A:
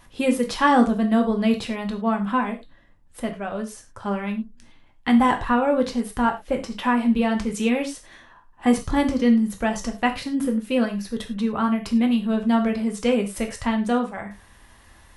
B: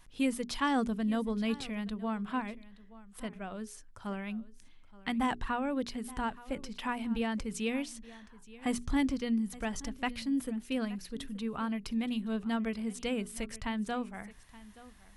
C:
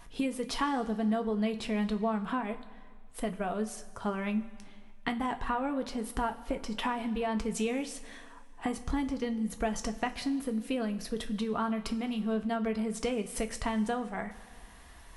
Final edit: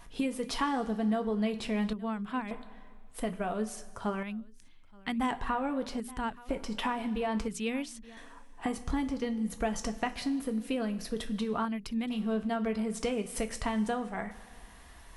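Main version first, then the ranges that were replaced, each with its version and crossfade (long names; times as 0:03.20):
C
0:01.93–0:02.51: punch in from B
0:04.23–0:05.31: punch in from B
0:06.00–0:06.49: punch in from B
0:07.48–0:08.17: punch in from B
0:11.65–0:12.10: punch in from B
not used: A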